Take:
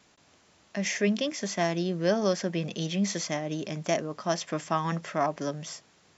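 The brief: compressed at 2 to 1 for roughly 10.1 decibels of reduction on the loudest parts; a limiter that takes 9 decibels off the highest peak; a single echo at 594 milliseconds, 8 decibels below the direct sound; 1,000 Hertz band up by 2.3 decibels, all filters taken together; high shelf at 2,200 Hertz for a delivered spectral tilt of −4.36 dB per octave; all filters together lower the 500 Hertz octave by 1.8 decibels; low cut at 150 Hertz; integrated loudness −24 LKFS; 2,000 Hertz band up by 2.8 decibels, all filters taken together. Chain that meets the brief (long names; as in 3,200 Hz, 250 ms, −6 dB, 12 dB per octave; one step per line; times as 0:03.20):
high-pass filter 150 Hz
parametric band 500 Hz −4 dB
parametric band 1,000 Hz +4.5 dB
parametric band 2,000 Hz +4.5 dB
high-shelf EQ 2,200 Hz −4.5 dB
downward compressor 2 to 1, threshold −40 dBFS
brickwall limiter −28.5 dBFS
single-tap delay 594 ms −8 dB
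level +15.5 dB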